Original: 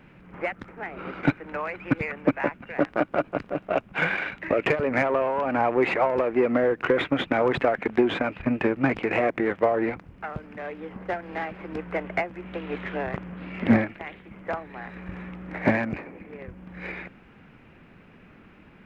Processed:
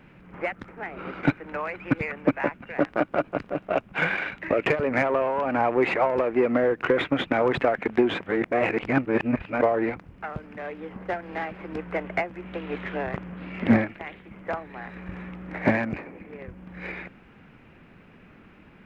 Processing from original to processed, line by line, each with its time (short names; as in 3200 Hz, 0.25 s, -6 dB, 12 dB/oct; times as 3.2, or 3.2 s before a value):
8.2–9.62 reverse